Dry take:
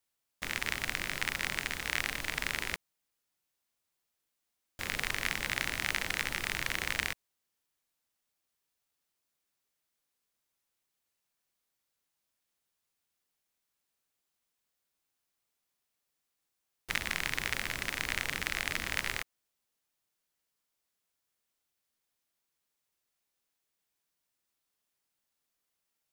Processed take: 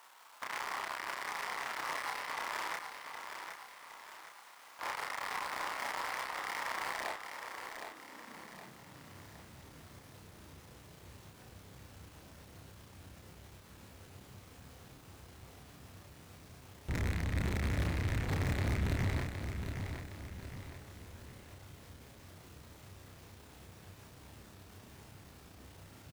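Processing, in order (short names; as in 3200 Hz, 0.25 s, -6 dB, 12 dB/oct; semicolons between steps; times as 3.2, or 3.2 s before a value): tilt -4 dB/oct; power-law curve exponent 0.5; high-pass sweep 1000 Hz -> 82 Hz, 6.84–9.41; hard clip -25.5 dBFS, distortion -7 dB; doubler 31 ms -3 dB; on a send: feedback echo 0.765 s, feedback 44%, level -7 dB; on the sum: gain -6 dB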